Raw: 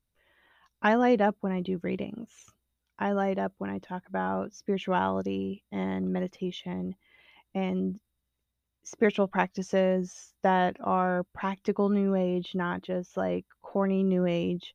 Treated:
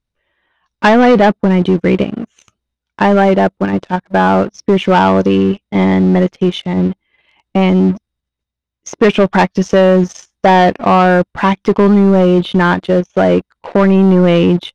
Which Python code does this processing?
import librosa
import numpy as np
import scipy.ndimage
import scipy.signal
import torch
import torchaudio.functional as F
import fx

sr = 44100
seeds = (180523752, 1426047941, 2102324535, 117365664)

p1 = fx.leveller(x, sr, passes=3)
p2 = scipy.signal.sosfilt(scipy.signal.butter(2, 6000.0, 'lowpass', fs=sr, output='sos'), p1)
p3 = fx.level_steps(p2, sr, step_db=22)
p4 = p2 + (p3 * librosa.db_to_amplitude(-2.5))
y = p4 * librosa.db_to_amplitude(5.5)